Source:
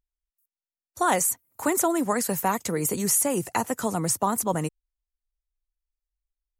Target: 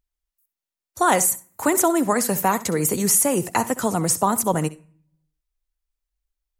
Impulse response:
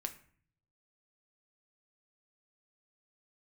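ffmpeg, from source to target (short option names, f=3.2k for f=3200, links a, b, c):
-filter_complex "[0:a]asplit=2[a][b];[1:a]atrim=start_sample=2205,adelay=65[c];[b][c]afir=irnorm=-1:irlink=0,volume=-14.5dB[d];[a][d]amix=inputs=2:normalize=0,volume=4.5dB"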